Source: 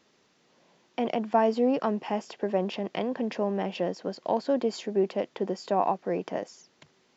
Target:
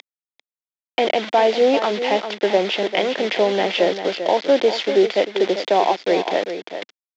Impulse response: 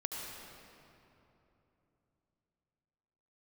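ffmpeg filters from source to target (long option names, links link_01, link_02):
-filter_complex "[0:a]acontrast=27,alimiter=limit=-12dB:level=0:latency=1:release=236,acompressor=mode=upward:threshold=-37dB:ratio=2.5,aresample=16000,acrusher=bits=5:mix=0:aa=0.000001,aresample=44100,highpass=frequency=240:width=0.5412,highpass=frequency=240:width=1.3066,equalizer=frequency=240:width_type=q:width=4:gain=-10,equalizer=frequency=1100:width_type=q:width=4:gain=-6,equalizer=frequency=2100:width_type=q:width=4:gain=6,equalizer=frequency=3400:width_type=q:width=4:gain=7,lowpass=frequency=5000:width=0.5412,lowpass=frequency=5000:width=1.3066,asplit=2[link_01][link_02];[link_02]aecho=0:1:395:0.335[link_03];[link_01][link_03]amix=inputs=2:normalize=0,volume=7dB"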